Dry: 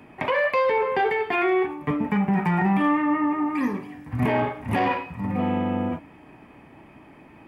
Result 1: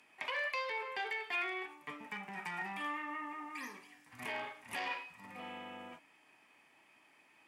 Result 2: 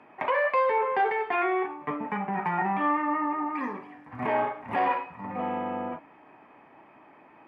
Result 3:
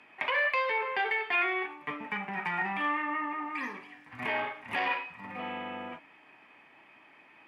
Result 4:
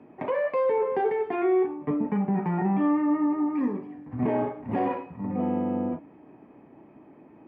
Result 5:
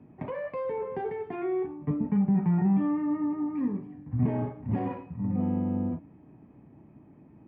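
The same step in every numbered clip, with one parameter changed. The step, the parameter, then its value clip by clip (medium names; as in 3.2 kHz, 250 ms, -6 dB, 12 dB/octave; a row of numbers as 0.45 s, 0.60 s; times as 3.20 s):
band-pass filter, frequency: 7 kHz, 1 kHz, 2.6 kHz, 360 Hz, 140 Hz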